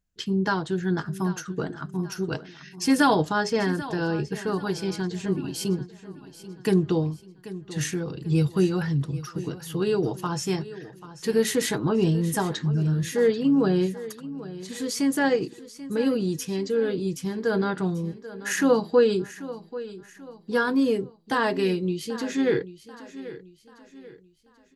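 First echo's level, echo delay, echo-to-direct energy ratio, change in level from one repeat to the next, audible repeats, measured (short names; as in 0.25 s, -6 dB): -15.5 dB, 0.787 s, -14.5 dB, -8.0 dB, 3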